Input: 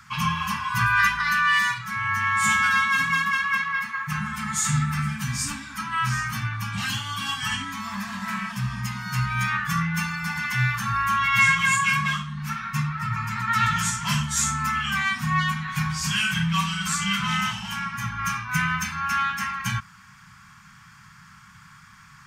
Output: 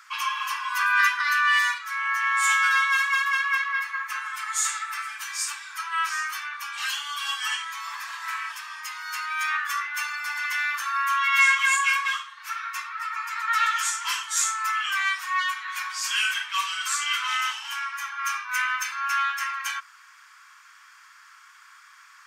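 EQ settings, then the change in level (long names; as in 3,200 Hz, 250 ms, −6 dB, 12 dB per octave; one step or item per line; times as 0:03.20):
high-pass filter 990 Hz 24 dB per octave
0.0 dB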